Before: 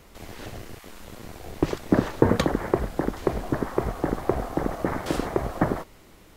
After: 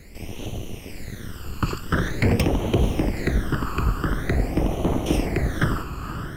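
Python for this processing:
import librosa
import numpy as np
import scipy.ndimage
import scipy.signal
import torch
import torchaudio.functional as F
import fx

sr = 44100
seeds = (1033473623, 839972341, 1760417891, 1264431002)

y = 10.0 ** (-17.0 / 20.0) * (np.abs((x / 10.0 ** (-17.0 / 20.0) + 3.0) % 4.0 - 2.0) - 1.0)
y = fx.echo_diffused(y, sr, ms=514, feedback_pct=43, wet_db=-8)
y = fx.phaser_stages(y, sr, stages=12, low_hz=630.0, high_hz=1600.0, hz=0.46, feedback_pct=45)
y = F.gain(torch.from_numpy(y), 6.0).numpy()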